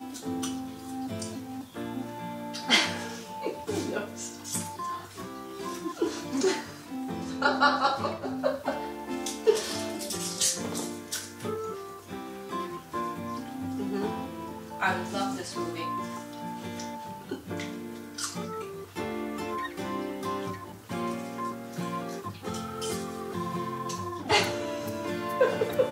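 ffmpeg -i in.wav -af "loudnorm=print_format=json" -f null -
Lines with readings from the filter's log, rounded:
"input_i" : "-31.4",
"input_tp" : "-7.7",
"input_lra" : "6.5",
"input_thresh" : "-41.4",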